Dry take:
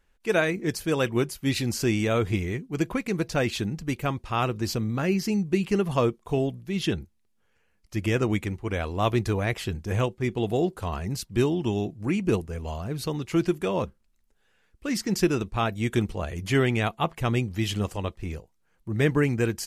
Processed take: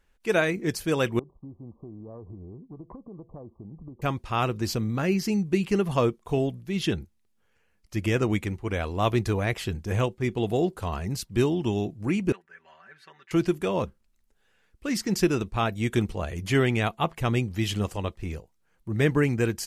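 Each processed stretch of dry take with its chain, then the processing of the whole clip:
0:01.19–0:04.02: downward compressor 8 to 1, threshold −34 dBFS + linear-phase brick-wall low-pass 1,200 Hz + tube saturation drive 19 dB, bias 0.75
0:12.32–0:13.31: resonant band-pass 1,700 Hz, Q 5.5 + comb filter 5.2 ms, depth 91%
whole clip: no processing

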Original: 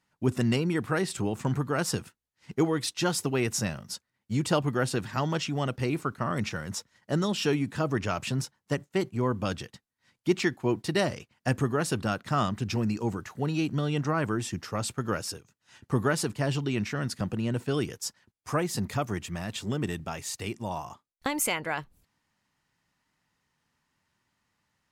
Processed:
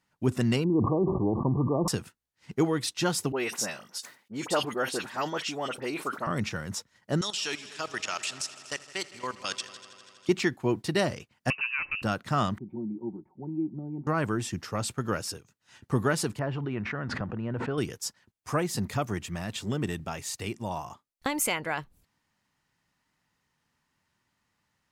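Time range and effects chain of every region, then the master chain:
0:00.64–0:01.88: linear-phase brick-wall low-pass 1,200 Hz + parametric band 330 Hz +5.5 dB 0.45 octaves + level that may fall only so fast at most 32 dB per second
0:03.32–0:06.27: high-pass filter 360 Hz + all-pass dispersion highs, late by 51 ms, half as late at 1,900 Hz + level that may fall only so fast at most 140 dB per second
0:07.21–0:10.29: meter weighting curve ITU-R 468 + output level in coarse steps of 16 dB + echo machine with several playback heads 81 ms, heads all three, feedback 68%, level −21 dB
0:11.50–0:12.02: high-frequency loss of the air 92 metres + voice inversion scrambler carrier 2,800 Hz + downward compressor 1.5 to 1, threshold −33 dBFS
0:12.58–0:14.07: formant resonators in series u + comb filter 5.4 ms, depth 69%
0:16.39–0:17.78: Chebyshev low-pass filter 1,400 Hz + parametric band 190 Hz −4 dB 2.7 octaves + background raised ahead of every attack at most 26 dB per second
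whole clip: no processing

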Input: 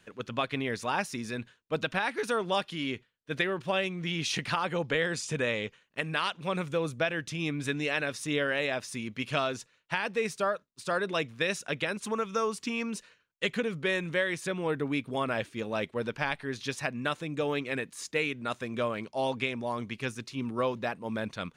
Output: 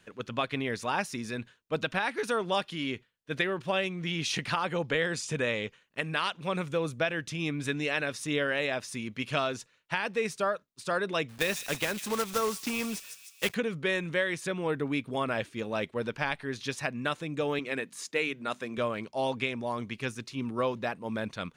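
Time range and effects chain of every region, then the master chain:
0:11.29–0:13.55: one scale factor per block 3 bits + delay with a high-pass on its return 153 ms, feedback 57%, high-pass 4,300 Hz, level −4 dB
0:17.59–0:18.78: high-pass filter 170 Hz + mains-hum notches 50/100/150/200/250 Hz
whole clip: no processing

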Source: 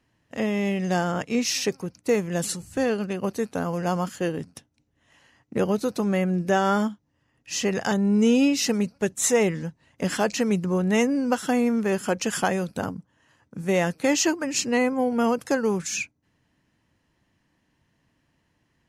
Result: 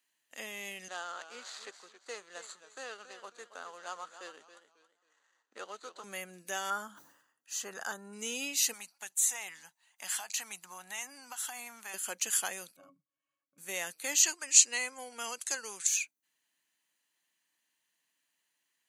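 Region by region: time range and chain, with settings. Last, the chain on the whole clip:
0:00.88–0:06.04: running median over 15 samples + loudspeaker in its box 420–6,900 Hz, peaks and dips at 1,300 Hz +7 dB, 2,300 Hz −7 dB, 5,200 Hz −4 dB + feedback echo with a swinging delay time 273 ms, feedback 32%, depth 130 cents, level −12 dB
0:06.70–0:08.13: high shelf with overshoot 1,800 Hz −6.5 dB, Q 3 + level that may fall only so fast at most 87 dB per second
0:08.73–0:11.94: low shelf with overshoot 610 Hz −8 dB, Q 3 + downward compressor 5 to 1, threshold −26 dBFS
0:12.76–0:13.58: high-shelf EQ 5,100 Hz +10 dB + resonances in every octave C#, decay 0.1 s
0:14.23–0:15.87: low-pass filter 8,800 Hz 24 dB per octave + spectral tilt +2.5 dB per octave
whole clip: high-pass filter 170 Hz; first difference; notch filter 5,300 Hz, Q 5.4; level +2.5 dB

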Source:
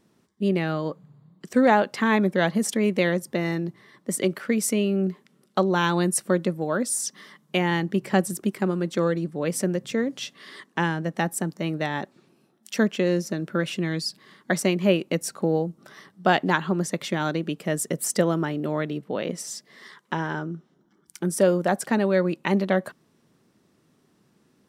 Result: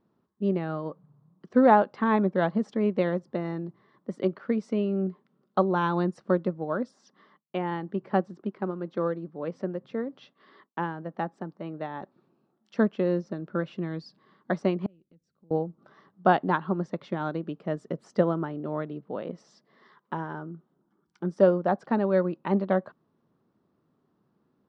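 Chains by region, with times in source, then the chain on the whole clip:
0:06.91–0:12.02: high-pass filter 200 Hz 6 dB per octave + high-frequency loss of the air 85 metres + downward expander −50 dBFS
0:14.86–0:15.51: guitar amp tone stack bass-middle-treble 10-0-1 + downward compressor 4 to 1, threshold −48 dBFS
whole clip: low-pass filter 4,600 Hz 24 dB per octave; high shelf with overshoot 1,600 Hz −8 dB, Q 1.5; expander for the loud parts 1.5 to 1, over −29 dBFS

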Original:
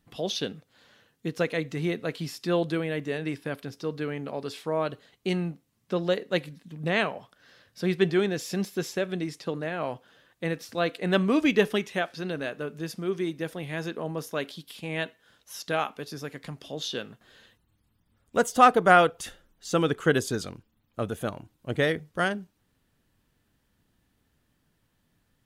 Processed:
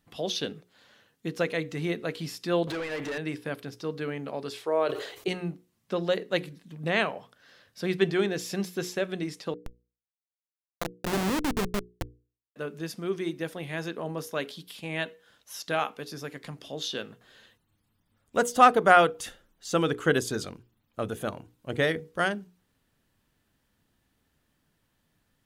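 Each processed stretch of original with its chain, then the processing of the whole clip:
0:02.67–0:03.18: downward compressor 10 to 1, threshold −31 dBFS + mid-hump overdrive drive 26 dB, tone 3,300 Hz, clips at −25 dBFS
0:04.61–0:05.28: low shelf with overshoot 290 Hz −9 dB, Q 3 + level that may fall only so fast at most 73 dB per second
0:09.54–0:12.56: spectral tilt −2 dB per octave + comparator with hysteresis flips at −19 dBFS
whole clip: low-shelf EQ 190 Hz −3 dB; mains-hum notches 60/120/180/240/300/360/420/480 Hz

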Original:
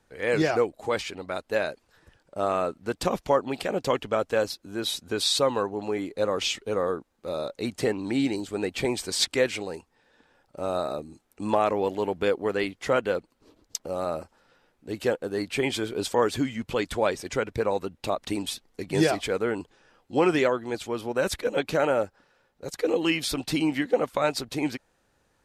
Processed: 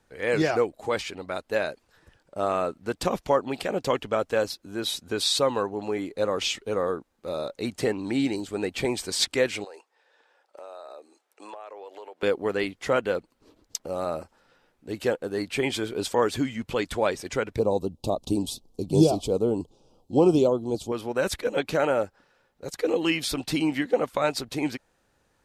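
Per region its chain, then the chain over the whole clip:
0:09.64–0:12.23: high-pass filter 440 Hz 24 dB per octave + high-shelf EQ 11,000 Hz −11.5 dB + downward compressor, threshold −39 dBFS
0:17.59–0:20.92: Butterworth band-reject 1,800 Hz, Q 0.66 + low-shelf EQ 340 Hz +7.5 dB
whole clip: no processing

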